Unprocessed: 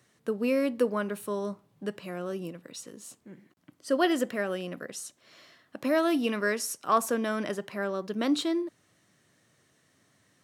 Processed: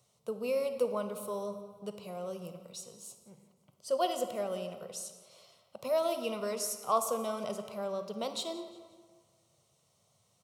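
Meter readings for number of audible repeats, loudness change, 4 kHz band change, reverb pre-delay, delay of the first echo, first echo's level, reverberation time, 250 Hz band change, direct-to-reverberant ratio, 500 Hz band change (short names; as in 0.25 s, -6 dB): 3, -5.5 dB, -4.0 dB, 33 ms, 0.177 s, -19.0 dB, 1.6 s, -13.0 dB, 8.5 dB, -3.0 dB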